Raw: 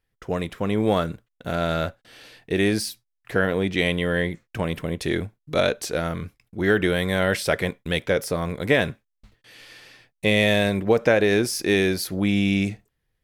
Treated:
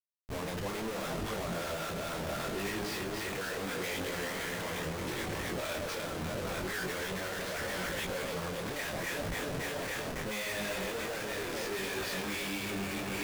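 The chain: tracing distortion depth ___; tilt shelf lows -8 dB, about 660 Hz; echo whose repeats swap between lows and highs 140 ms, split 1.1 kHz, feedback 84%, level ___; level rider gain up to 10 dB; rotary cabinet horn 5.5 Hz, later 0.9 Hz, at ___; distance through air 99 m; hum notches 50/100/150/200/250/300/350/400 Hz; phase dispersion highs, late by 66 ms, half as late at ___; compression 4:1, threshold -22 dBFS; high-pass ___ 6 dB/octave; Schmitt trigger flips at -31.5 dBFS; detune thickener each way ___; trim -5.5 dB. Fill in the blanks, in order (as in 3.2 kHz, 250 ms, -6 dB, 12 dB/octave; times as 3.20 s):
0.028 ms, -6.5 dB, 1.62 s, 890 Hz, 60 Hz, 26 cents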